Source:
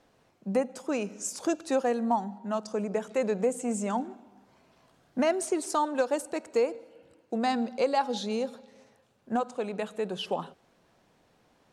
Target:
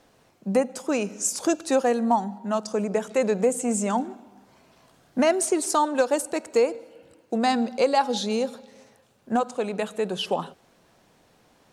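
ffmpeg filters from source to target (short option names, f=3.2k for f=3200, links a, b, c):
-af "highshelf=f=5.7k:g=6,volume=5dB"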